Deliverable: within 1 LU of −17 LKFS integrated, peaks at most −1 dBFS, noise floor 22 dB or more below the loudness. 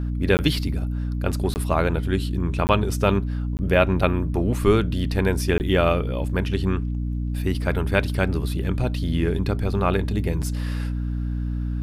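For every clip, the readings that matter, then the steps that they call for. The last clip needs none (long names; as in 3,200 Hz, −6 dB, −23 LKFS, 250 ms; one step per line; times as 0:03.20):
number of dropouts 5; longest dropout 19 ms; mains hum 60 Hz; hum harmonics up to 300 Hz; level of the hum −23 dBFS; integrated loudness −23.5 LKFS; sample peak −3.5 dBFS; target loudness −17.0 LKFS
→ repair the gap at 0:00.37/0:01.54/0:02.67/0:03.57/0:05.58, 19 ms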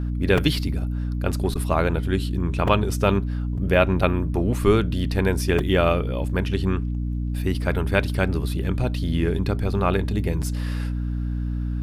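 number of dropouts 0; mains hum 60 Hz; hum harmonics up to 300 Hz; level of the hum −23 dBFS
→ mains-hum notches 60/120/180/240/300 Hz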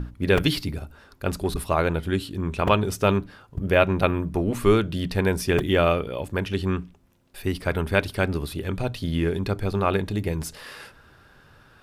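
mains hum none found; integrated loudness −24.5 LKFS; sample peak −3.5 dBFS; target loudness −17.0 LKFS
→ level +7.5 dB
brickwall limiter −1 dBFS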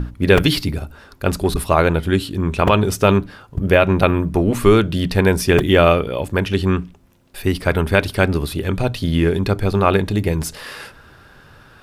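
integrated loudness −17.5 LKFS; sample peak −1.0 dBFS; background noise floor −47 dBFS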